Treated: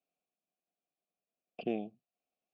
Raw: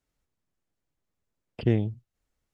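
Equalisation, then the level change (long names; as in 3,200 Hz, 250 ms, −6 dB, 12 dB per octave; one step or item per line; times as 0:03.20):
formant filter a
low shelf with overshoot 140 Hz −8 dB, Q 3
parametric band 1,100 Hz −13.5 dB 1.3 octaves
+10.5 dB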